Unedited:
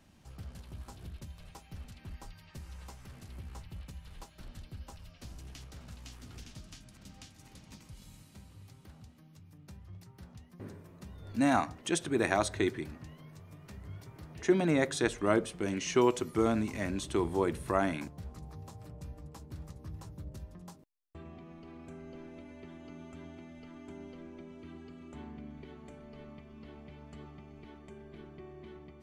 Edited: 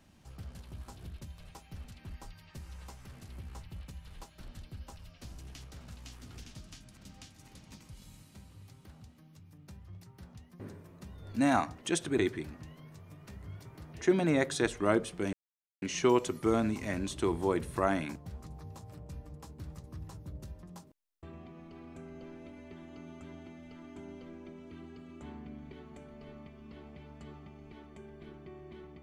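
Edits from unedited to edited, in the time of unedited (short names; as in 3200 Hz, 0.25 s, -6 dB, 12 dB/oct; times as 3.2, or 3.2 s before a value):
12.18–12.59 cut
15.74 insert silence 0.49 s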